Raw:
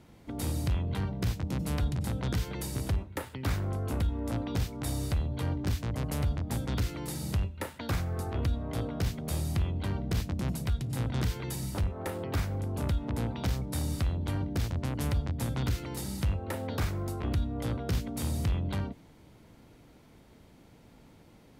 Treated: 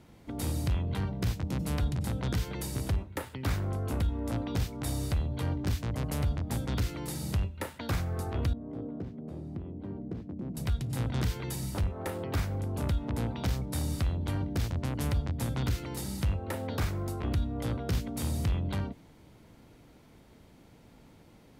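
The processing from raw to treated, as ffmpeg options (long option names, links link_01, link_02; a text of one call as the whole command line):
ffmpeg -i in.wav -filter_complex "[0:a]asettb=1/sr,asplit=3[link_01][link_02][link_03];[link_01]atrim=end=8.534[link_04];[link_02]atrim=start=8.53:end=10.57,asetpts=PTS-STARTPTS,afade=type=in:duration=0.004:curve=qsin,afade=type=out:start_time=2.036:duration=0.004:curve=qsin,bandpass=frequency=290:width_type=q:width=1.4[link_05];[link_03]atrim=start=10.566[link_06];[link_04][link_05]acrossfade=duration=0.004:curve1=hsin:curve2=qsin[link_07];[link_07][link_06]acrossfade=duration=0.004:curve1=qsin:curve2=hsin" out.wav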